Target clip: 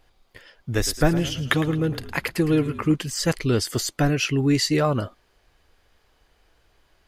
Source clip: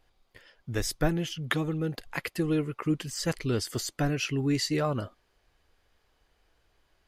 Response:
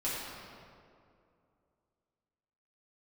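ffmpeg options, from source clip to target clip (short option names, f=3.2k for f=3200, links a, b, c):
-filter_complex "[0:a]asettb=1/sr,asplit=3[a][b][c];[a]atrim=end=0.754[d];[b]atrim=start=0.75:end=2.96,asetpts=PTS-STARTPTS,afade=t=in:d=0.004:c=qsin,afade=t=out:st=2.206:d=0.004:c=qsin,asplit=6[e][f][g][h][i][j];[f]adelay=109,afreqshift=-32,volume=-14dB[k];[g]adelay=218,afreqshift=-64,volume=-19.7dB[l];[h]adelay=327,afreqshift=-96,volume=-25.4dB[m];[i]adelay=436,afreqshift=-128,volume=-31dB[n];[j]adelay=545,afreqshift=-160,volume=-36.7dB[o];[e][k][l][m][n][o]amix=inputs=6:normalize=0,atrim=end_sample=97461[p];[c]atrim=start=2.956[q];[d][p]acrossfade=d=0.004:c1=hsin:c2=qsin[r];[r][q]acrossfade=d=0.004:c1=qsin:c2=hsin,volume=7dB"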